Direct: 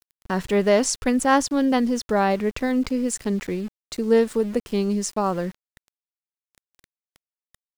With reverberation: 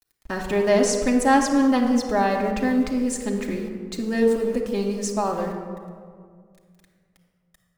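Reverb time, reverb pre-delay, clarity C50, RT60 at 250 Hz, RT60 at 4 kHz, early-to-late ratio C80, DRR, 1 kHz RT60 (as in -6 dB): 2.0 s, 3 ms, 5.0 dB, 2.4 s, 0.95 s, 6.5 dB, -1.5 dB, 1.9 s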